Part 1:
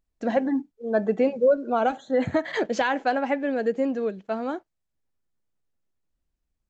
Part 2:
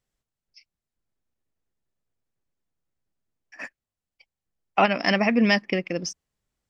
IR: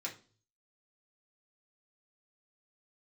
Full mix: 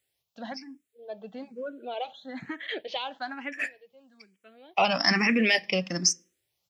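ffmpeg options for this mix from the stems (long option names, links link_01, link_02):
-filter_complex "[0:a]lowpass=frequency=3400:width_type=q:width=2.7,adelay=150,volume=-11dB[link_01];[1:a]alimiter=limit=-15.5dB:level=0:latency=1:release=11,volume=0.5dB,asplit=3[link_02][link_03][link_04];[link_03]volume=-10dB[link_05];[link_04]apad=whole_len=301978[link_06];[link_01][link_06]sidechaincompress=threshold=-59dB:ratio=3:attack=9.1:release=1070[link_07];[2:a]atrim=start_sample=2205[link_08];[link_05][link_08]afir=irnorm=-1:irlink=0[link_09];[link_07][link_02][link_09]amix=inputs=3:normalize=0,highpass=91,highshelf=frequency=2100:gain=10.5,asplit=2[link_10][link_11];[link_11]afreqshift=1.1[link_12];[link_10][link_12]amix=inputs=2:normalize=1"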